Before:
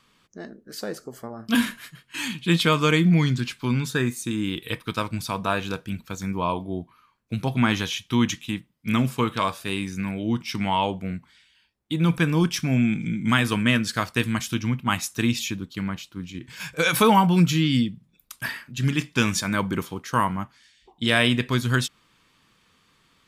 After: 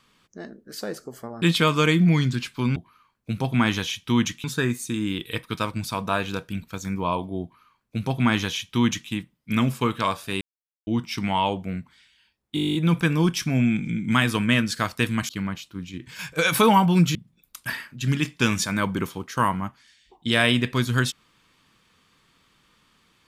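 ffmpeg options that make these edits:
-filter_complex "[0:a]asplit=18[a][b][c][d][e][f][g][h][i][j][k][l][m][n][o][p][q][r];[a]atrim=end=1.422[s];[b]atrim=start=2.468:end=3.812[t];[c]atrim=start=6.788:end=8.472[u];[d]atrim=start=3.808:end=9.78,asetpts=PTS-STARTPTS,afade=t=out:st=5.968:d=0.004:c=hsin[v];[e]atrim=start=9.78:end=10.24,asetpts=PTS-STARTPTS,volume=0[w];[f]atrim=start=10.24:end=11.942,asetpts=PTS-STARTPTS,afade=t=in:d=0.004:c=hsin[x];[g]atrim=start=11.918:end=11.942[y];[h]atrim=start=11.918:end=11.942[z];[i]atrim=start=11.918:end=11.942[aa];[j]atrim=start=11.918:end=11.942[ab];[k]atrim=start=11.918:end=11.942[ac];[l]atrim=start=11.918:end=11.942[ad];[m]atrim=start=11.918:end=11.942[ae];[n]atrim=start=11.918:end=11.942[af];[o]atrim=start=11.918:end=11.942[ag];[p]atrim=start=11.918:end=14.462[ah];[q]atrim=start=15.698:end=17.562[ai];[r]atrim=start=17.908[aj];[s][t]acrossfade=d=0.004:c1=hsin:c2=hsin[ak];[ak][u]acrossfade=d=0.004:c1=hsin:c2=hsin[al];[v][w][x]concat=n=3:v=0:a=1[am];[al][am]acrossfade=d=0.004:c1=hsin:c2=hsin[an];[an][y]acrossfade=d=0.004:c1=hsin:c2=hsin[ao];[ao][z]acrossfade=d=0.004:c1=hsin:c2=hsin[ap];[ap][aa]acrossfade=d=0.004:c1=hsin:c2=hsin[aq];[aq][ab]acrossfade=d=0.004:c1=hsin:c2=hsin[ar];[ar][ac]acrossfade=d=0.004:c1=hsin:c2=hsin[as];[as][ad]acrossfade=d=0.004:c1=hsin:c2=hsin[at];[at][ae]acrossfade=d=0.004:c1=hsin:c2=hsin[au];[au][af]acrossfade=d=0.004:c1=hsin:c2=hsin[av];[av][ag]acrossfade=d=0.004:c1=hsin:c2=hsin[aw];[aw][ah]acrossfade=d=0.004:c1=hsin:c2=hsin[ax];[ax][ai]acrossfade=d=0.004:c1=hsin:c2=hsin[ay];[ay][aj]acrossfade=d=0.004:c1=hsin:c2=hsin"

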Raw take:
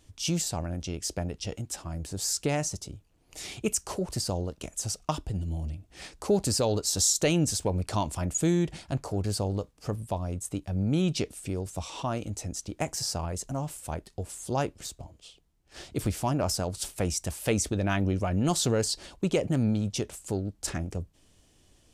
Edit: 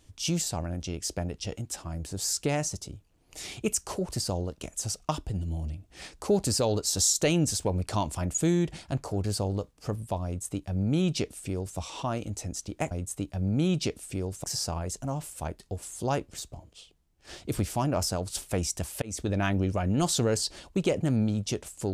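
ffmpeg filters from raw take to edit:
-filter_complex "[0:a]asplit=4[a][b][c][d];[a]atrim=end=12.912[e];[b]atrim=start=10.248:end=11.782[f];[c]atrim=start=12.908:end=17.49,asetpts=PTS-STARTPTS,afade=t=out:st=4.578:d=0.004:c=hsin[g];[d]atrim=start=17.49,asetpts=PTS-STARTPTS,afade=t=in:d=0.26[h];[e][f]acrossfade=d=0.004:c1=hsin:c2=hsin[i];[g][h]concat=n=2:v=0:a=1[j];[i][j]acrossfade=d=0.004:c1=hsin:c2=hsin"

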